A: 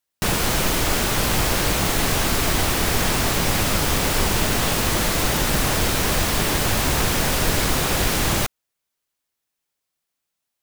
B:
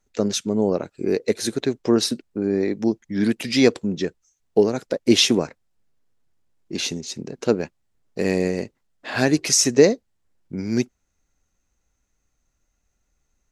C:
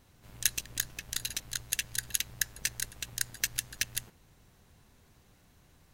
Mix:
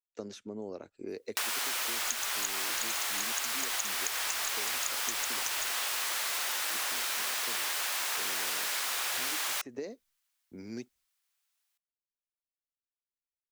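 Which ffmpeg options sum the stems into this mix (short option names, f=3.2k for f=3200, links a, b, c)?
-filter_complex "[0:a]highpass=1.1k,adelay=1150,volume=1dB[a];[1:a]agate=range=-33dB:threshold=-39dB:ratio=3:detection=peak,acrossover=split=130|2300[b][c][d];[b]acompressor=threshold=-46dB:ratio=4[e];[c]acompressor=threshold=-22dB:ratio=4[f];[d]acompressor=threshold=-38dB:ratio=4[g];[e][f][g]amix=inputs=3:normalize=0,volume=-13.5dB[h];[2:a]lowpass=f=6.8k:t=q:w=8.8,adelay=1650,volume=-5dB[i];[a][h][i]amix=inputs=3:normalize=0,equalizer=f=160:w=3.9:g=-14.5,acompressor=threshold=-31dB:ratio=5"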